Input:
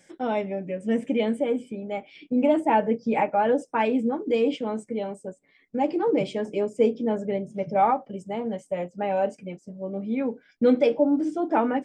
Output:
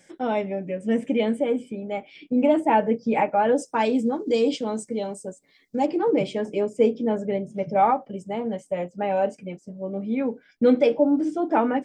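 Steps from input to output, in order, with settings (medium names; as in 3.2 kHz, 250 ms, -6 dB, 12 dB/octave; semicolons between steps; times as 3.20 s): 3.56–5.86 s: resonant high shelf 3.4 kHz +9 dB, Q 1.5; trim +1.5 dB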